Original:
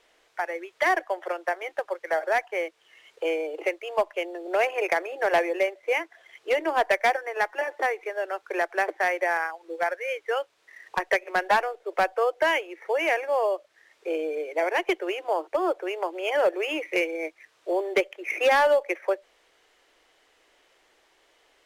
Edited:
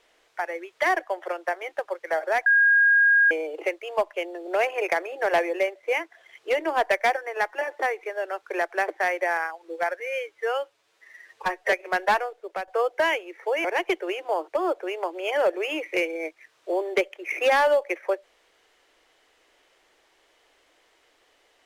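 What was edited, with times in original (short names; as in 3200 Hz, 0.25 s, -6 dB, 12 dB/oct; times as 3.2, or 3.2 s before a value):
2.46–3.31 bleep 1630 Hz -14.5 dBFS
10–11.15 stretch 1.5×
11.66–12.1 fade out, to -12.5 dB
13.07–14.64 cut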